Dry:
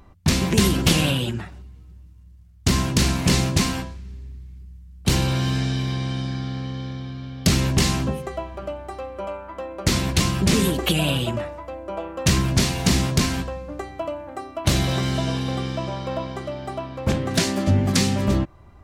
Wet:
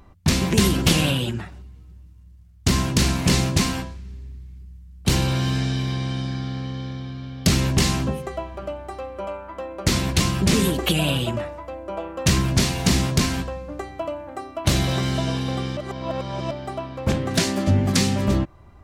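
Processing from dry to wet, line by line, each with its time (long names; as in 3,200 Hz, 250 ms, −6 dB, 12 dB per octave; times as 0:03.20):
0:15.77–0:16.51: reverse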